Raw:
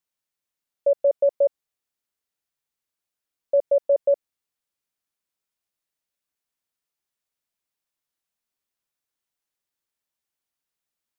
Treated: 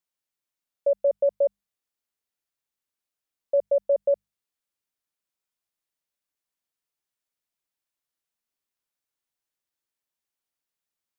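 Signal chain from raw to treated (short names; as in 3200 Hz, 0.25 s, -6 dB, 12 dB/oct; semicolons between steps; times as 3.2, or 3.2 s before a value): notches 50/100/150/200 Hz; gain -2.5 dB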